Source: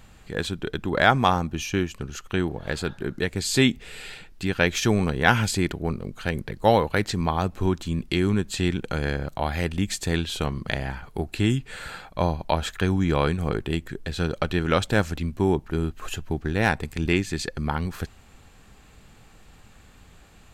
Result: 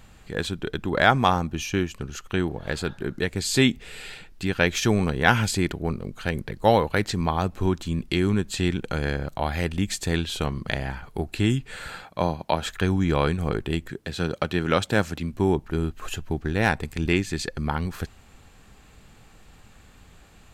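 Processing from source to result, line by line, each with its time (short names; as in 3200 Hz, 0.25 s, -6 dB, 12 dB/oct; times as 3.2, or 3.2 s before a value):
12.03–12.66 HPF 110 Hz
13.9–15.33 HPF 97 Hz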